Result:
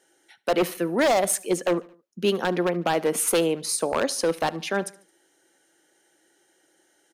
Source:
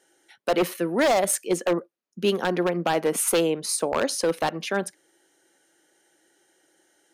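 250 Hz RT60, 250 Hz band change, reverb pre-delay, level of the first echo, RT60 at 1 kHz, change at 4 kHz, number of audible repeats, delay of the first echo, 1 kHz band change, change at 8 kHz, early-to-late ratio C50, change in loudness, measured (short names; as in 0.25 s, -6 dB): none, 0.0 dB, none, -22.0 dB, none, 0.0 dB, 3, 73 ms, 0.0 dB, 0.0 dB, none, 0.0 dB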